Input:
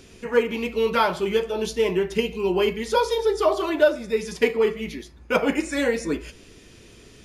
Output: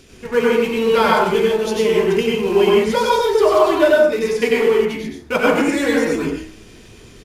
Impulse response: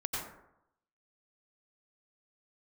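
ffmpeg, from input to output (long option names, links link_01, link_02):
-filter_complex "[0:a]bandreject=frequency=63.52:width_type=h:width=4,bandreject=frequency=127.04:width_type=h:width=4,bandreject=frequency=190.56:width_type=h:width=4,bandreject=frequency=254.08:width_type=h:width=4,bandreject=frequency=317.6:width_type=h:width=4,bandreject=frequency=381.12:width_type=h:width=4,bandreject=frequency=444.64:width_type=h:width=4,bandreject=frequency=508.16:width_type=h:width=4,bandreject=frequency=571.68:width_type=h:width=4,bandreject=frequency=635.2:width_type=h:width=4,bandreject=frequency=698.72:width_type=h:width=4,bandreject=frequency=762.24:width_type=h:width=4,bandreject=frequency=825.76:width_type=h:width=4,bandreject=frequency=889.28:width_type=h:width=4,bandreject=frequency=952.8:width_type=h:width=4,bandreject=frequency=1016.32:width_type=h:width=4,bandreject=frequency=1079.84:width_type=h:width=4,bandreject=frequency=1143.36:width_type=h:width=4,bandreject=frequency=1206.88:width_type=h:width=4,bandreject=frequency=1270.4:width_type=h:width=4,bandreject=frequency=1333.92:width_type=h:width=4,bandreject=frequency=1397.44:width_type=h:width=4,bandreject=frequency=1460.96:width_type=h:width=4,bandreject=frequency=1524.48:width_type=h:width=4,bandreject=frequency=1588:width_type=h:width=4,bandreject=frequency=1651.52:width_type=h:width=4,bandreject=frequency=1715.04:width_type=h:width=4,bandreject=frequency=1778.56:width_type=h:width=4,bandreject=frequency=1842.08:width_type=h:width=4,bandreject=frequency=1905.6:width_type=h:width=4,bandreject=frequency=1969.12:width_type=h:width=4,asplit=2[link_01][link_02];[link_02]acrusher=bits=5:dc=4:mix=0:aa=0.000001,volume=-10dB[link_03];[link_01][link_03]amix=inputs=2:normalize=0[link_04];[1:a]atrim=start_sample=2205,afade=type=out:start_time=0.31:duration=0.01,atrim=end_sample=14112[link_05];[link_04][link_05]afir=irnorm=-1:irlink=0,aresample=32000,aresample=44100,volume=1dB"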